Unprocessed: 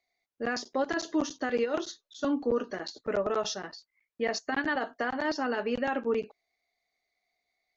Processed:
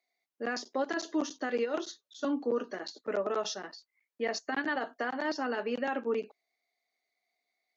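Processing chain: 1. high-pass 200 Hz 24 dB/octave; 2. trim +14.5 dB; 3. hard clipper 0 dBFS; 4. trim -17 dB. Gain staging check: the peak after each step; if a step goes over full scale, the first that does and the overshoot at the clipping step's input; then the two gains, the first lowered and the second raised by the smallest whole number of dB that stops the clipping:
-16.5 dBFS, -2.0 dBFS, -2.0 dBFS, -19.0 dBFS; nothing clips

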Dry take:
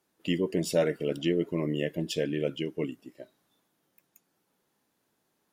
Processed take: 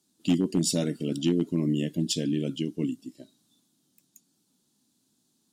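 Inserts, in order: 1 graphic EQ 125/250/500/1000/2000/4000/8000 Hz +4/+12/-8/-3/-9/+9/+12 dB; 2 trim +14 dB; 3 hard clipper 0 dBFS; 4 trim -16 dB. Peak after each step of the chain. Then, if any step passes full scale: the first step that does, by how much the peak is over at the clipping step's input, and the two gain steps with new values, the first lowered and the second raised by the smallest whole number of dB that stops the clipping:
-9.0 dBFS, +5.0 dBFS, 0.0 dBFS, -16.0 dBFS; step 2, 5.0 dB; step 2 +9 dB, step 4 -11 dB

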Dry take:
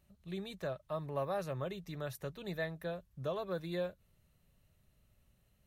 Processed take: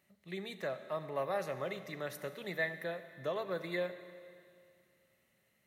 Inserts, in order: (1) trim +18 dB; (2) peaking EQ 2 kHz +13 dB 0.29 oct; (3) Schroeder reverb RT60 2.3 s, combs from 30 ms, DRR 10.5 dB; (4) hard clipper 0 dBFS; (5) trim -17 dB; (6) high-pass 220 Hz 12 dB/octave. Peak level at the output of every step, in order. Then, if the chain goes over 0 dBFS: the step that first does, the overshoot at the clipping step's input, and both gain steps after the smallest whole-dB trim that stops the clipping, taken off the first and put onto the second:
-7.0 dBFS, -6.0 dBFS, -5.5 dBFS, -5.5 dBFS, -22.5 dBFS, -21.5 dBFS; nothing clips

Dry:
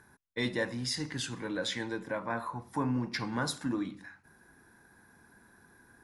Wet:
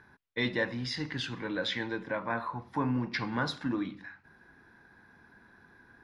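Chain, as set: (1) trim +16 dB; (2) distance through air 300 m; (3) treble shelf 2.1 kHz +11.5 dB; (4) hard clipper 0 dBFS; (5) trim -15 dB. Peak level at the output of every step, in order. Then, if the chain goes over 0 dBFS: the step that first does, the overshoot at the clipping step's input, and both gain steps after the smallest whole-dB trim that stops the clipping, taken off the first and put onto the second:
-4.0 dBFS, -4.5 dBFS, -3.5 dBFS, -3.5 dBFS, -18.5 dBFS; nothing clips

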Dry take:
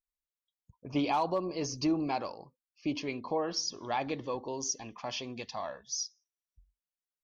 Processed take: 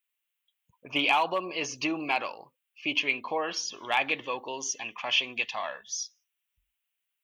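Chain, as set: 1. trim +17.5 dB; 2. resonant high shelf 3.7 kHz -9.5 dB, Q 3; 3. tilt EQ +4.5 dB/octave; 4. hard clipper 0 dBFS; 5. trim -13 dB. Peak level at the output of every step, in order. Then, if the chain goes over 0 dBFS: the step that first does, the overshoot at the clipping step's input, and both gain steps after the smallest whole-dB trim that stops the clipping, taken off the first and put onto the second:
-2.5 dBFS, -1.0 dBFS, +3.5 dBFS, 0.0 dBFS, -13.0 dBFS; step 3, 3.5 dB; step 1 +13.5 dB, step 5 -9 dB

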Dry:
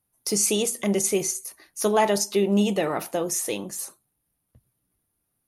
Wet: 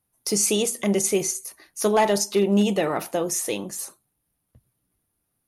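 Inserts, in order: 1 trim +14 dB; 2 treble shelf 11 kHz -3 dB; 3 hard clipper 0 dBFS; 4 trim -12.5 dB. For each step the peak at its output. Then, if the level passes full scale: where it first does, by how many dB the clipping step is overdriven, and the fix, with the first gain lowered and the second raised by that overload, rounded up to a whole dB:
+4.5 dBFS, +4.5 dBFS, 0.0 dBFS, -12.5 dBFS; step 1, 4.5 dB; step 1 +9 dB, step 4 -7.5 dB

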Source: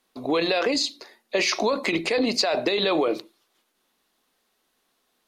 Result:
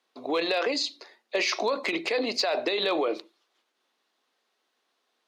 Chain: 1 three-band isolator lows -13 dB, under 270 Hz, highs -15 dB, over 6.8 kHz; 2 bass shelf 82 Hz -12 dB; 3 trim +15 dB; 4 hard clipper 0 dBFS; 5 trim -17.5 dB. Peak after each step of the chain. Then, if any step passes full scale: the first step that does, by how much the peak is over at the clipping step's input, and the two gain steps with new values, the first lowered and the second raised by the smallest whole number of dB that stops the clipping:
-11.5 dBFS, -11.0 dBFS, +4.0 dBFS, 0.0 dBFS, -17.5 dBFS; step 3, 4.0 dB; step 3 +11 dB, step 5 -13.5 dB

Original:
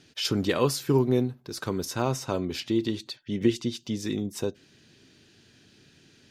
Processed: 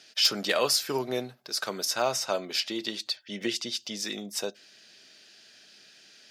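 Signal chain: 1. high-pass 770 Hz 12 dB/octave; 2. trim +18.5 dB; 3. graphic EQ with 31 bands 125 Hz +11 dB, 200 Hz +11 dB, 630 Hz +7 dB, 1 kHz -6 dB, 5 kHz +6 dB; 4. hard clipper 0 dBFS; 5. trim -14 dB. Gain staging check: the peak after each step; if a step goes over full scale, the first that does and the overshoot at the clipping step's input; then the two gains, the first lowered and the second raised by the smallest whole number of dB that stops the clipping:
-14.5 dBFS, +4.0 dBFS, +7.0 dBFS, 0.0 dBFS, -14.0 dBFS; step 2, 7.0 dB; step 2 +11.5 dB, step 5 -7 dB

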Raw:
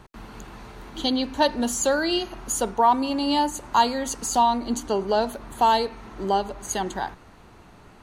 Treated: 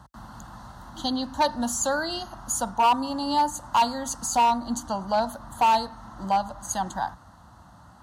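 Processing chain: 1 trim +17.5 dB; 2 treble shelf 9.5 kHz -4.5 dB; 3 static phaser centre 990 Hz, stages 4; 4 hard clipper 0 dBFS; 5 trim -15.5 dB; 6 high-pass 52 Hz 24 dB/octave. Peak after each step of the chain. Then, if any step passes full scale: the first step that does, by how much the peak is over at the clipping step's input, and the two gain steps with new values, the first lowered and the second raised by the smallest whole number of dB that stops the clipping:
+10.0 dBFS, +10.0 dBFS, +9.0 dBFS, 0.0 dBFS, -15.5 dBFS, -13.5 dBFS; step 1, 9.0 dB; step 1 +8.5 dB, step 5 -6.5 dB

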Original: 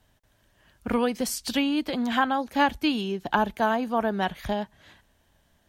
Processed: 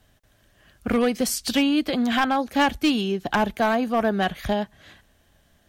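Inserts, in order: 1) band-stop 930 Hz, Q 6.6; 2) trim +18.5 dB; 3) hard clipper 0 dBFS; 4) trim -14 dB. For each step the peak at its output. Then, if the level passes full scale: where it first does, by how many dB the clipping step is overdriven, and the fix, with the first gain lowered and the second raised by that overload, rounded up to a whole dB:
-9.0 dBFS, +9.5 dBFS, 0.0 dBFS, -14.0 dBFS; step 2, 9.5 dB; step 2 +8.5 dB, step 4 -4 dB

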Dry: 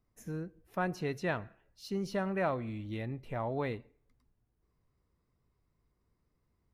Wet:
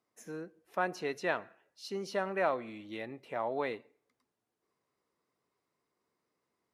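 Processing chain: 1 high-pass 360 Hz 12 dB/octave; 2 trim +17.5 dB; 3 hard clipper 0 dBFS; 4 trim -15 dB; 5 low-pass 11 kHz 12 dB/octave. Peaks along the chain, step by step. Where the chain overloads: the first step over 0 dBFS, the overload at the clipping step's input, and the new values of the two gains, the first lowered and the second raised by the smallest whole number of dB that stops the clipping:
-19.0 dBFS, -1.5 dBFS, -1.5 dBFS, -16.5 dBFS, -16.5 dBFS; nothing clips

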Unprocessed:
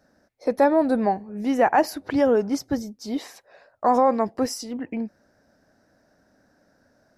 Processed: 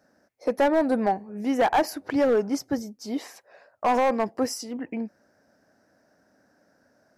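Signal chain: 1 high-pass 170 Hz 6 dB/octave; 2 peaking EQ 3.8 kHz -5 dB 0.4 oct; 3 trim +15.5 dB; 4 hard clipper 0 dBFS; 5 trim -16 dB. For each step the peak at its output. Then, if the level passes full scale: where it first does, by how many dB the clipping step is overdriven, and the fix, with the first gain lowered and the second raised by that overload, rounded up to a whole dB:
-7.5 dBFS, -7.5 dBFS, +8.0 dBFS, 0.0 dBFS, -16.0 dBFS; step 3, 8.0 dB; step 3 +7.5 dB, step 5 -8 dB

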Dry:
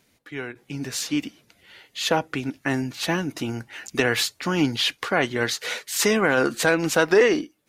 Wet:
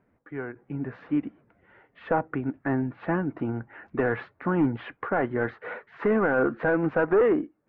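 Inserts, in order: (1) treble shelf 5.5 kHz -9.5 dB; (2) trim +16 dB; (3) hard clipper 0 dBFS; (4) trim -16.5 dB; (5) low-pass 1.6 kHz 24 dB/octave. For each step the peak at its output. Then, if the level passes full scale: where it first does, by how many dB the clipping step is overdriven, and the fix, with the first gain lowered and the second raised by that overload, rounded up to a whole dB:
-7.0 dBFS, +9.0 dBFS, 0.0 dBFS, -16.5 dBFS, -15.0 dBFS; step 2, 9.0 dB; step 2 +7 dB, step 4 -7.5 dB

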